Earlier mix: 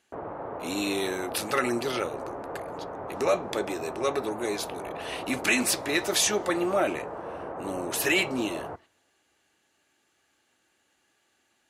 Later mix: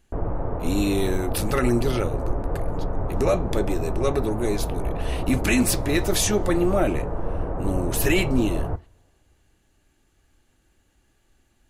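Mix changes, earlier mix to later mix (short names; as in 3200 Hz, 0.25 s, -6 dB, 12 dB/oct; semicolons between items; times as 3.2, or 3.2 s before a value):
background: send +6.5 dB; master: remove weighting filter A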